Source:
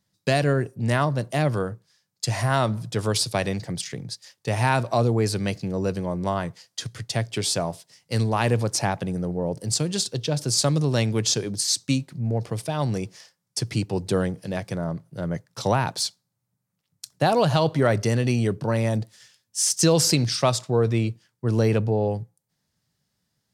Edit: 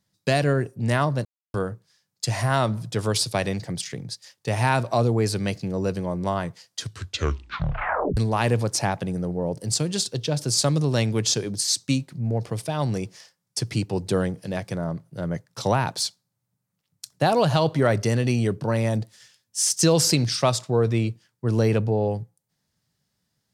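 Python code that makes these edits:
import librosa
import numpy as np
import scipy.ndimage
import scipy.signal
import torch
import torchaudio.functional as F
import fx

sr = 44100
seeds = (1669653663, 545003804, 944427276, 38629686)

y = fx.edit(x, sr, fx.silence(start_s=1.25, length_s=0.29),
    fx.tape_stop(start_s=6.8, length_s=1.37), tone=tone)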